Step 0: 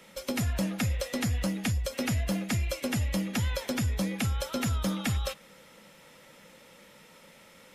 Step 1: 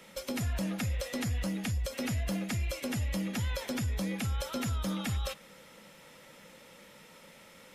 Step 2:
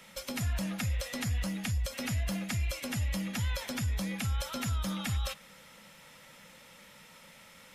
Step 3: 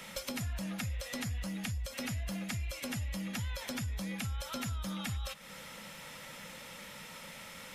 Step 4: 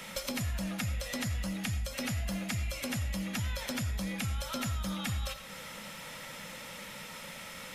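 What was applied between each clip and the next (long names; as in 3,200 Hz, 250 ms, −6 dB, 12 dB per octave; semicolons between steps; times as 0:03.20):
brickwall limiter −26.5 dBFS, peak gain reduction 7 dB
parametric band 380 Hz −9 dB 1.3 octaves; level +1.5 dB
downward compressor 4 to 1, threshold −44 dBFS, peak gain reduction 13 dB; level +6.5 dB
convolution reverb RT60 0.40 s, pre-delay 45 ms, DRR 9.5 dB; level +3 dB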